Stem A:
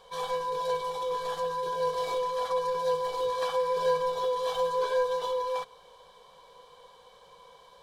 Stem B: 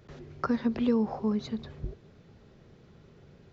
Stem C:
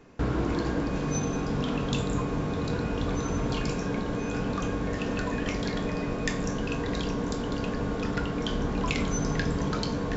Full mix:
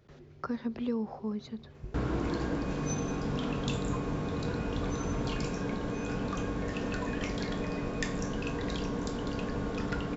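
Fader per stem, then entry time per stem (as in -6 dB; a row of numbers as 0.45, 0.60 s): off, -6.5 dB, -4.0 dB; off, 0.00 s, 1.75 s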